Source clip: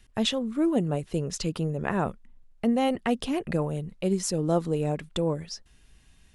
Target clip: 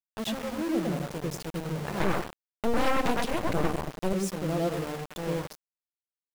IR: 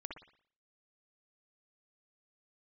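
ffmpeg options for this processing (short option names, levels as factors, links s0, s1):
-filter_complex "[1:a]atrim=start_sample=2205,asetrate=25578,aresample=44100[s0];[0:a][s0]afir=irnorm=-1:irlink=0,asettb=1/sr,asplit=3[s1][s2][s3];[s1]atrim=end=2.004[s4];[s2]atrim=start=2:end=4.13,asetpts=PTS-STARTPTS,afade=t=in:d=0.004:c=qsin,afade=t=out:st=2.126:d=0.004:c=qsin,aeval=exprs='0.251*(cos(1*acos(clip(val(0)/0.251,-1,1)))-cos(1*PI/2))+0.0355*(cos(3*acos(clip(val(0)/0.251,-1,1)))-cos(3*PI/2))+0.0794*(cos(4*acos(clip(val(0)/0.251,-1,1)))-cos(4*PI/2))+0.0316*(cos(6*acos(clip(val(0)/0.251,-1,1)))-cos(6*PI/2))+0.0794*(cos(8*acos(clip(val(0)/0.251,-1,1)))-cos(8*PI/2))':c=same[s5];[s3]atrim=start=4.126[s6];[s4][s5]acrossfade=d=0.004:c1=hsin:c2=qsin[s7];[s7][s6]acrossfade=d=0.004:c1=qsin:c2=hsin,aeval=exprs='val(0)*gte(abs(val(0)),0.0422)':c=same,volume=0.562"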